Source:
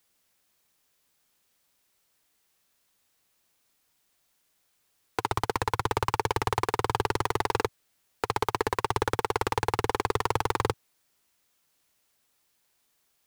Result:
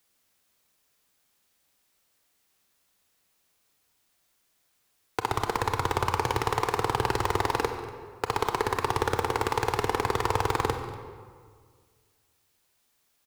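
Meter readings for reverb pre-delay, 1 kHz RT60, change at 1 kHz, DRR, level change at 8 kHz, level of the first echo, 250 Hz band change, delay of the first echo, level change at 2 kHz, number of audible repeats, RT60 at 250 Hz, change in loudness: 25 ms, 1.8 s, +1.0 dB, 6.0 dB, +0.5 dB, -17.5 dB, +1.5 dB, 0.24 s, +1.0 dB, 1, 2.1 s, +1.0 dB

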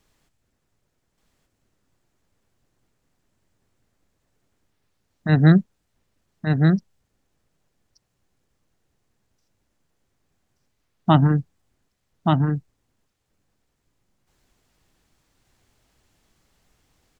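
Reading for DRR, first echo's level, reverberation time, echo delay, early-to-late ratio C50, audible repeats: none, -3.5 dB, none, 1.178 s, none, 1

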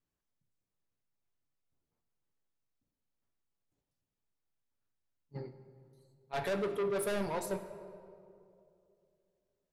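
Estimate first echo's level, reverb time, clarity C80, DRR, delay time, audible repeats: none, 2.6 s, 11.0 dB, 7.5 dB, none, none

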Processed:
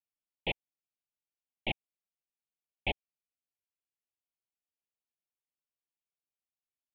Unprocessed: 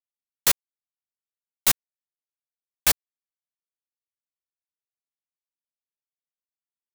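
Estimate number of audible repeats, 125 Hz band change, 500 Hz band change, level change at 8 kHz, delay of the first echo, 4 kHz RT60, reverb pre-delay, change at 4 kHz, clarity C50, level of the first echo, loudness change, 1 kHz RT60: none, -2.0 dB, -3.0 dB, under -40 dB, none, none, none, -11.0 dB, none, none, -15.0 dB, none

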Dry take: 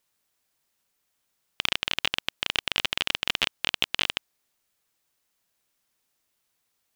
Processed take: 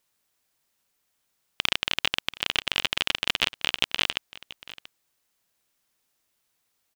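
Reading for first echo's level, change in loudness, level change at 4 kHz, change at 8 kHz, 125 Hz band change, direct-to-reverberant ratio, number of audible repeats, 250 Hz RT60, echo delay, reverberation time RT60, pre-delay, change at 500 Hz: -18.5 dB, +1.0 dB, +1.0 dB, +1.0 dB, +1.0 dB, none, 1, none, 0.684 s, none, none, +1.0 dB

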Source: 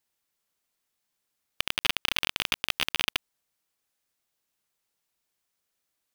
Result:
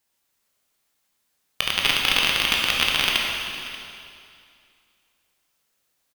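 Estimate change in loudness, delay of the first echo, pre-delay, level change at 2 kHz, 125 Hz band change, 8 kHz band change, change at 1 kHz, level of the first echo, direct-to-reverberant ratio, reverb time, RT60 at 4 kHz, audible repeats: +7.5 dB, 0.585 s, 8 ms, +8.5 dB, +8.5 dB, +8.5 dB, +9.0 dB, -18.0 dB, -2.0 dB, 2.5 s, 2.3 s, 1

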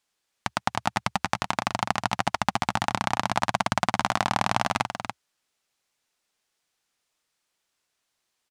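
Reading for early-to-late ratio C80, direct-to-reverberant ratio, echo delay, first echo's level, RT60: none, none, 0.287 s, -7.5 dB, none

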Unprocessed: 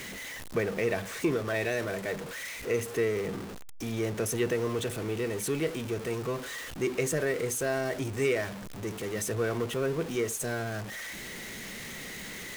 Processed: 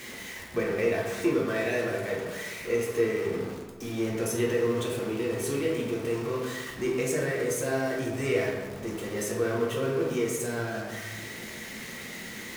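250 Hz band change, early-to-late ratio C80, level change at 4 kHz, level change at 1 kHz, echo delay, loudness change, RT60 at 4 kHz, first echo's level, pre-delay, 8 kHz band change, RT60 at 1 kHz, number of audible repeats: +3.0 dB, 4.5 dB, +0.5 dB, +1.5 dB, none, +2.0 dB, 0.80 s, none, 3 ms, -0.5 dB, 1.3 s, none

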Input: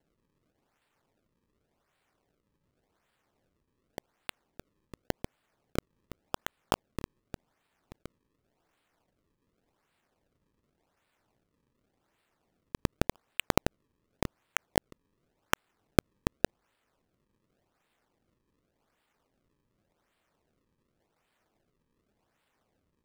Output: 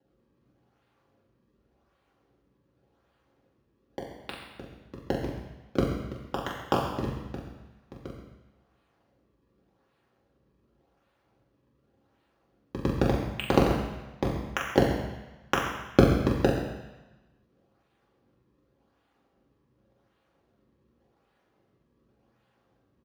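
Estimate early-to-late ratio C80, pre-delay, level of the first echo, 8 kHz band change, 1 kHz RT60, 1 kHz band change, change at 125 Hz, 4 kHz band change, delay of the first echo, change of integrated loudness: 5.0 dB, 3 ms, -4.5 dB, -4.5 dB, 1.2 s, +6.0 dB, +8.5 dB, +1.5 dB, 43 ms, +6.5 dB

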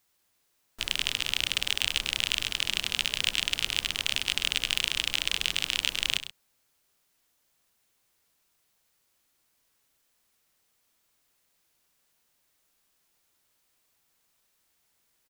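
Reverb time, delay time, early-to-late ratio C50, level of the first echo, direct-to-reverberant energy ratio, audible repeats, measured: none, 0.1 s, none, -13.0 dB, none, 2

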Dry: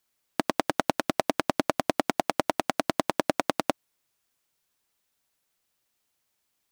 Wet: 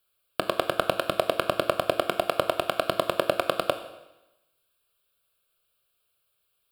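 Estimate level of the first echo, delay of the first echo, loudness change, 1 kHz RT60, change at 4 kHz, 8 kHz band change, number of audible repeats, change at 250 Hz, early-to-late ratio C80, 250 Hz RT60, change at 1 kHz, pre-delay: none, none, +1.5 dB, 0.95 s, +3.5 dB, -4.0 dB, none, -5.5 dB, 12.5 dB, 1.0 s, 0.0 dB, 20 ms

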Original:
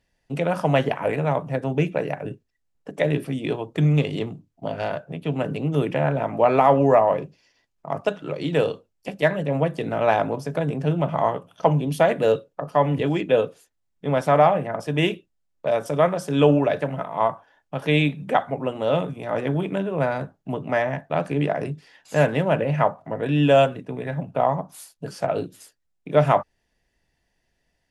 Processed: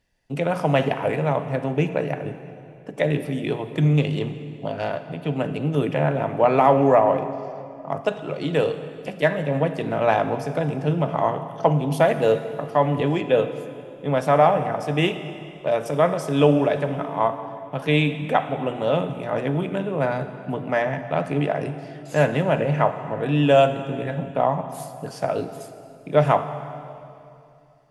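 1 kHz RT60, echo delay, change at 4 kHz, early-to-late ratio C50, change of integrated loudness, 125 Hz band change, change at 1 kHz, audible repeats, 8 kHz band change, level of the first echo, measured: 2.6 s, none, +0.5 dB, 10.5 dB, +0.5 dB, +0.5 dB, +0.5 dB, none, n/a, none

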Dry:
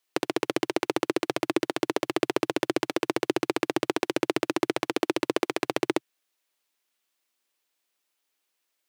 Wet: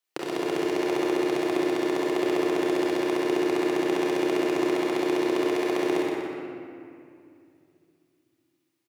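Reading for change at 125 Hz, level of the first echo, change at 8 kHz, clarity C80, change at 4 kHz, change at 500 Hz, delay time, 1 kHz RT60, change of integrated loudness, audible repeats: -1.0 dB, -5.5 dB, -2.5 dB, -1.5 dB, -2.0 dB, +3.5 dB, 0.122 s, 2.4 s, +2.5 dB, 1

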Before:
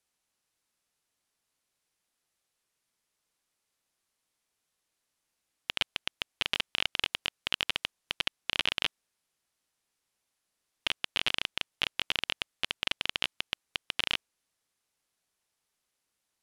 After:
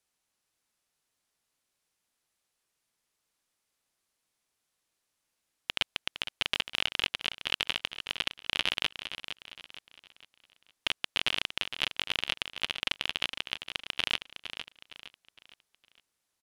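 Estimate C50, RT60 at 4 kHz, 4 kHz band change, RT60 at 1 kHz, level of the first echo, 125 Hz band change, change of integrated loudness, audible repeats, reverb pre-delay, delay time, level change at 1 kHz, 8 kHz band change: none, none, +0.5 dB, none, -10.0 dB, +0.5 dB, 0.0 dB, 3, none, 0.461 s, +0.5 dB, +0.5 dB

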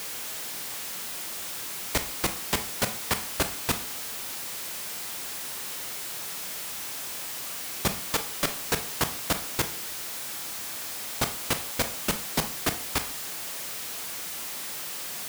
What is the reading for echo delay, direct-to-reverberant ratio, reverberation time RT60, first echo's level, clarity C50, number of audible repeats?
none, 8.0 dB, 0.45 s, none, 12.5 dB, none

